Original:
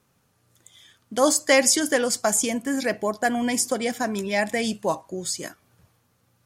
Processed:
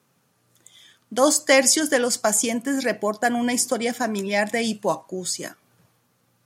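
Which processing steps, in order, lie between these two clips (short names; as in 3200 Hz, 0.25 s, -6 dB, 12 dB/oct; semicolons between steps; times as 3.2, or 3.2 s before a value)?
HPF 120 Hz 24 dB/oct; gain +1.5 dB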